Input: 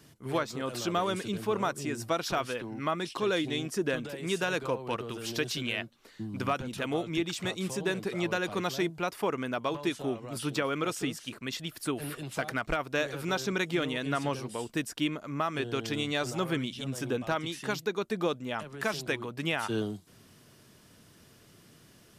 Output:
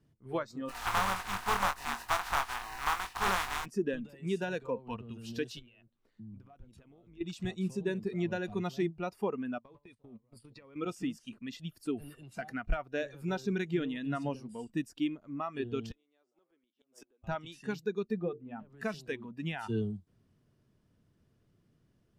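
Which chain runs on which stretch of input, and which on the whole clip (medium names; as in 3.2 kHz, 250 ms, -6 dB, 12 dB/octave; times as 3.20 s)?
0.68–3.64 s: spectral contrast reduction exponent 0.15 + peaking EQ 1.1 kHz +14 dB 1.8 oct + doubling 21 ms -7 dB
5.59–7.21 s: compression, threshold -41 dBFS + AM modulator 110 Hz, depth 25%
9.58–10.76 s: gate -37 dBFS, range -21 dB + rippled EQ curve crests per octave 0.93, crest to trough 6 dB + compression 8:1, threshold -37 dBFS
15.91–17.24 s: high-pass 310 Hz 24 dB/octave + inverted gate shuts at -28 dBFS, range -26 dB
18.19–18.70 s: tape spacing loss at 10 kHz 28 dB + hum notches 50/100/150/200/250/300/350/400/450 Hz
whole clip: spectral noise reduction 13 dB; tilt EQ -3 dB/octave; trim -5.5 dB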